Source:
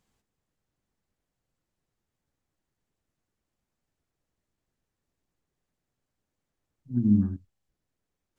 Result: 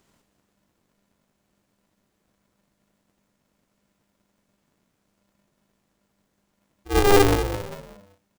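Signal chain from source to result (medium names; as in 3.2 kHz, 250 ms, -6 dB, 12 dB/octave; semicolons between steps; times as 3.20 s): sine folder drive 6 dB, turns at -11.5 dBFS; doubling 44 ms -10 dB; frequency-shifting echo 195 ms, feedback 37%, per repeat +50 Hz, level -9 dB; polarity switched at an audio rate 200 Hz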